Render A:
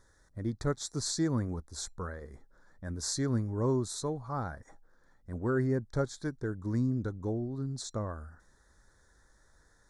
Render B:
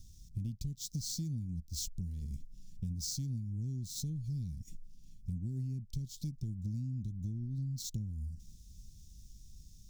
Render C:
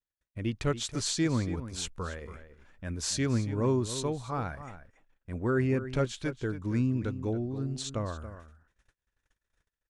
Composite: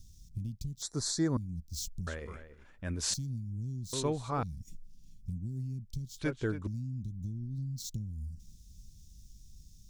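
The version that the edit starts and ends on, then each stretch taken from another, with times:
B
0.82–1.37 s: from A
2.07–3.14 s: from C
3.93–4.43 s: from C
6.19–6.67 s: from C

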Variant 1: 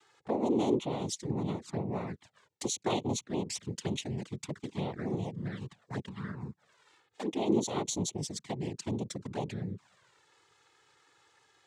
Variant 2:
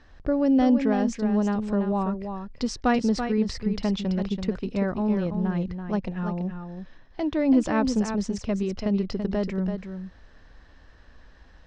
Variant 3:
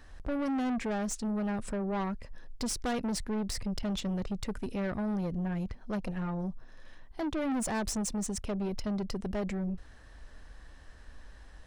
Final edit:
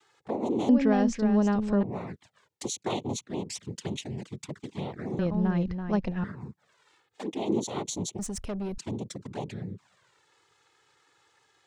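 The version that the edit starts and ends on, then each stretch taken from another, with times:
1
0.69–1.83 s: from 2
5.19–6.24 s: from 2
8.19–8.78 s: from 3

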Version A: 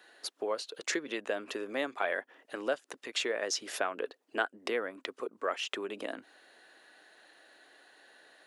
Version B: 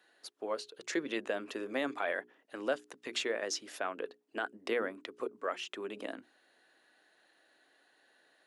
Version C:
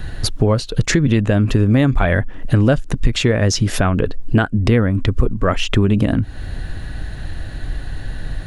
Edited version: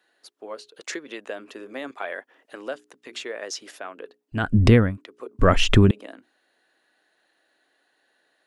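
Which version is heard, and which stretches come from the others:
B
0.76–1.39 s: from A
1.91–2.71 s: from A
3.26–3.71 s: from A
4.44–4.86 s: from C, crossfade 0.24 s
5.39–5.91 s: from C

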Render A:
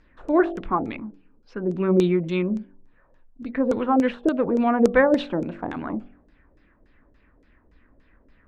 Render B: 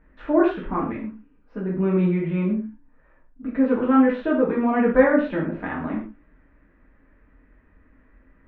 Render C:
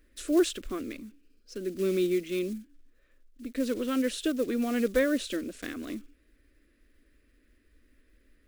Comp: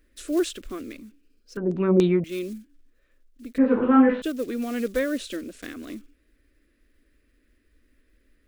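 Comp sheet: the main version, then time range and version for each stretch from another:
C
1.57–2.24 s: from A
3.58–4.22 s: from B

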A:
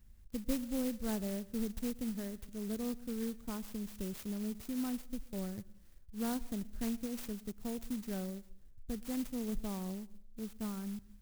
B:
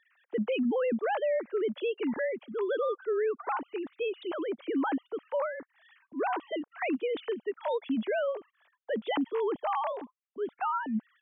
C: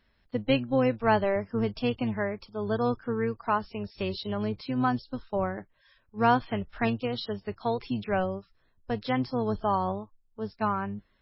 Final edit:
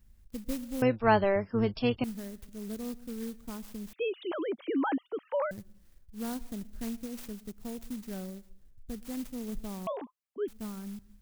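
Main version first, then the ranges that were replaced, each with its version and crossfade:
A
0.82–2.04 s: from C
3.93–5.51 s: from B
9.87–10.48 s: from B

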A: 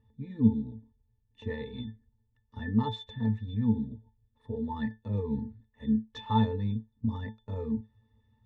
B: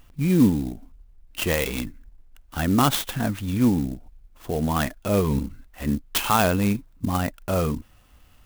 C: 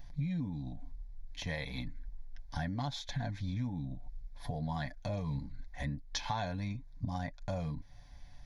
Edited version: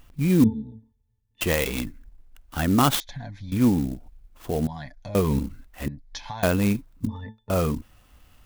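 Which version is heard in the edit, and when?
B
0.44–1.41 s: from A
3.00–3.52 s: from C
4.67–5.15 s: from C
5.88–6.43 s: from C
7.07–7.50 s: from A

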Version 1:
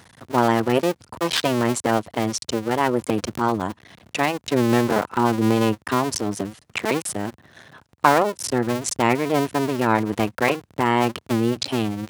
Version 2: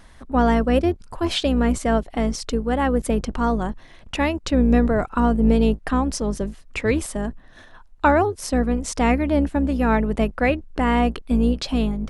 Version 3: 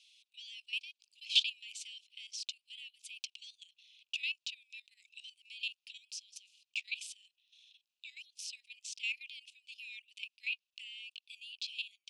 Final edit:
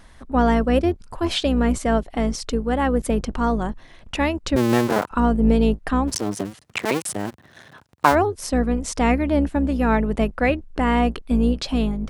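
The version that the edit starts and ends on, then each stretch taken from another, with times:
2
4.56–5.11 s: from 1
6.10–8.13 s: from 1, crossfade 0.06 s
not used: 3

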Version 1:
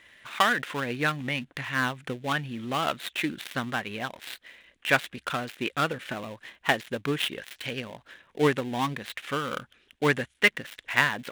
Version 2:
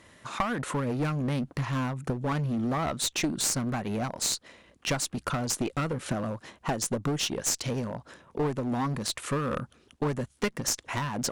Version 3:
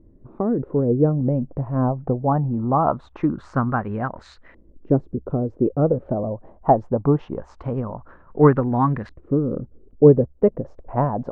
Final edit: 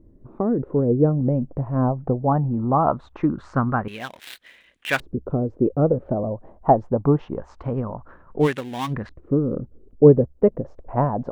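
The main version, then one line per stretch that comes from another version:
3
3.88–5.00 s: from 1
8.44–8.91 s: from 1, crossfade 0.10 s
not used: 2

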